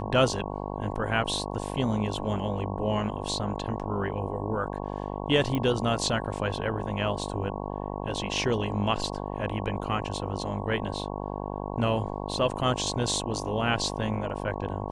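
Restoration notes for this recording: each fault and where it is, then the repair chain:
buzz 50 Hz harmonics 22 -34 dBFS
5.55 pop -17 dBFS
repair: de-click; de-hum 50 Hz, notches 22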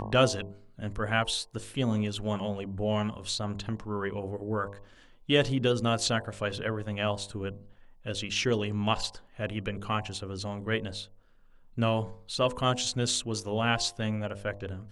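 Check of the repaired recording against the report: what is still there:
none

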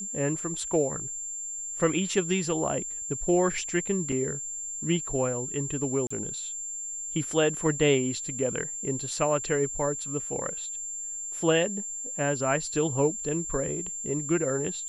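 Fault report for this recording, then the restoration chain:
tone 7300 Hz -33 dBFS
4.12 gap 3.4 ms
6.07–6.11 gap 35 ms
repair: notch 7300 Hz, Q 30; interpolate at 4.12, 3.4 ms; interpolate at 6.07, 35 ms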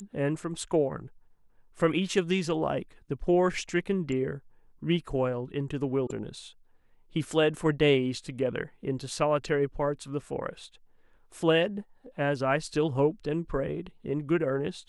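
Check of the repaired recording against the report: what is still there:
none

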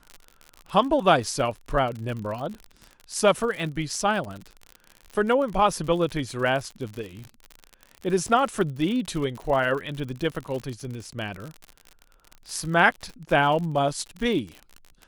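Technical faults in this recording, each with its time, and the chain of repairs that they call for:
crackle 50/s -31 dBFS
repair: de-click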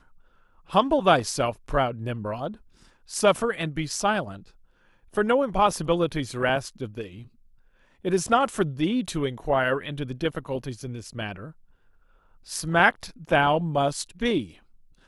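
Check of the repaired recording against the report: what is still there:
none

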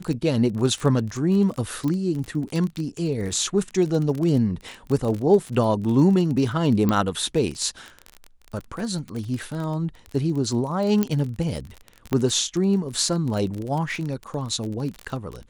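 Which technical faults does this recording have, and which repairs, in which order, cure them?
crackle 26/s -27 dBFS
1.88 pop -16 dBFS
6.89 pop -10 dBFS
11.03 pop -9 dBFS
12.13 pop -11 dBFS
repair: de-click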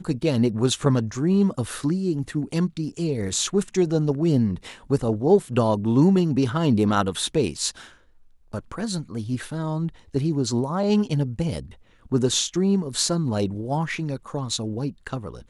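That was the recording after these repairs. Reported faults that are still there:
none

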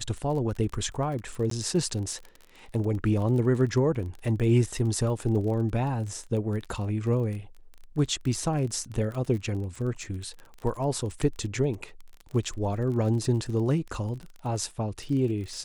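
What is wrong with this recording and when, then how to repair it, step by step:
crackle 29/s -34 dBFS
1.5–1.51 gap 13 ms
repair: de-click; interpolate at 1.5, 13 ms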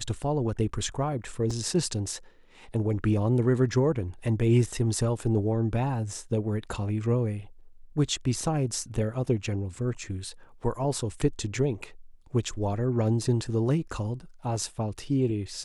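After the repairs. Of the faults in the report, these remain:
none

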